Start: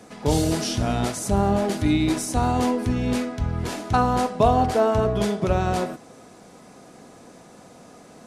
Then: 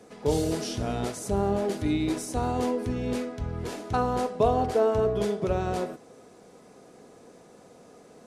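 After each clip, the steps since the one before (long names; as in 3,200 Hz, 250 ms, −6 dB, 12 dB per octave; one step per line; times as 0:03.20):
parametric band 440 Hz +8 dB 0.58 octaves
level −7.5 dB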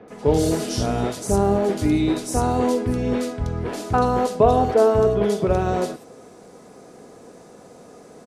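multiband delay without the direct sound lows, highs 80 ms, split 2,900 Hz
level +7 dB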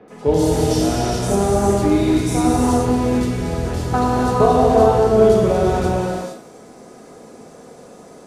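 reverb whose tail is shaped and stops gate 490 ms flat, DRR −3.5 dB
level −1 dB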